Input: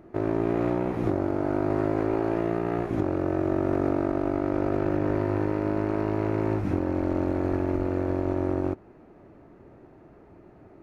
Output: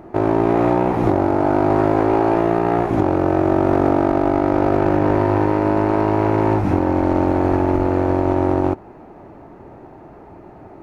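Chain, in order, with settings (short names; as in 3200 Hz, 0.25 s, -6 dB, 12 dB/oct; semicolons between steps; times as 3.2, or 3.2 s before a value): bell 850 Hz +8.5 dB 0.62 oct; in parallel at -8.5 dB: hard clip -25 dBFS, distortion -7 dB; on the sum: gain +6.5 dB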